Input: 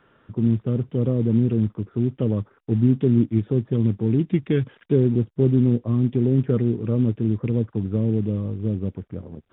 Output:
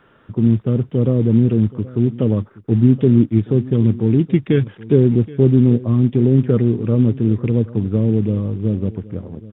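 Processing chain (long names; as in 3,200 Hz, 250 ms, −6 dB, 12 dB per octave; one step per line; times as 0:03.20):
single-tap delay 775 ms −19 dB
level +5.5 dB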